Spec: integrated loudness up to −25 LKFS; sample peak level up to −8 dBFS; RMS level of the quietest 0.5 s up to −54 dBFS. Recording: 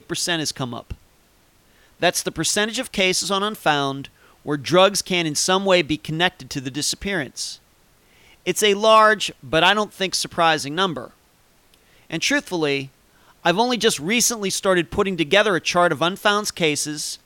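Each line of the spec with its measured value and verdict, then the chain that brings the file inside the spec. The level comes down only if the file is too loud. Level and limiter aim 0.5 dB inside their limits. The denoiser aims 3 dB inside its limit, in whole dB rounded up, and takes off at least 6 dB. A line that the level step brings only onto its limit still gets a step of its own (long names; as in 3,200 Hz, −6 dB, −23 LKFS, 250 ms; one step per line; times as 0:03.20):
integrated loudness −20.0 LKFS: out of spec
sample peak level −4.0 dBFS: out of spec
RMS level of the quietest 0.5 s −57 dBFS: in spec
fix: level −5.5 dB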